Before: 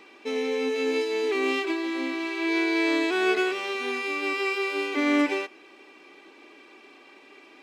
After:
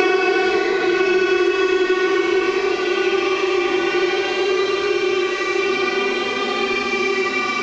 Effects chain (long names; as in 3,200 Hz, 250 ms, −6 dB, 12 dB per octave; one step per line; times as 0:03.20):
variable-slope delta modulation 32 kbit/s
on a send: feedback echo with a low-pass in the loop 172 ms, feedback 62%, low-pass 2,300 Hz, level −7.5 dB
on the sum: extreme stretch with random phases 11×, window 0.05 s, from 0:03.29
downward compressor, threshold −22 dBFS, peak gain reduction 7 dB
level +8.5 dB